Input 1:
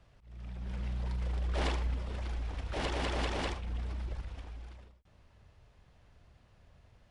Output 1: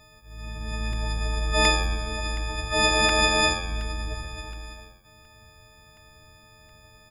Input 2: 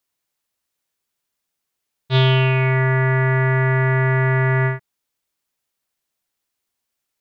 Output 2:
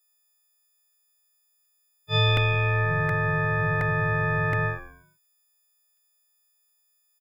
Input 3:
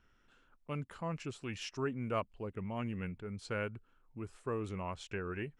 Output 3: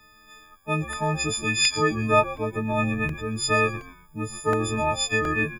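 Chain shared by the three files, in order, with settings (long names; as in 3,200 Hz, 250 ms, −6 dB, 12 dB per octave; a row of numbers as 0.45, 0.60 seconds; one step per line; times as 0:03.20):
every partial snapped to a pitch grid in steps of 6 semitones
echo with shifted repeats 126 ms, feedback 31%, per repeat −87 Hz, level −15 dB
regular buffer underruns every 0.72 s, samples 64, repeat, from 0:00.93
loudness normalisation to −24 LKFS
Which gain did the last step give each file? +8.0, −6.5, +12.5 decibels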